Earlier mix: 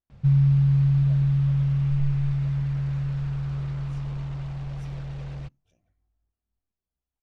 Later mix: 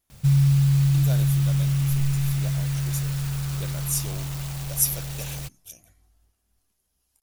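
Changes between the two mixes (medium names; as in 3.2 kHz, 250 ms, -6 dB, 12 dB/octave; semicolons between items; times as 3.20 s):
speech +12.0 dB; master: remove tape spacing loss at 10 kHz 37 dB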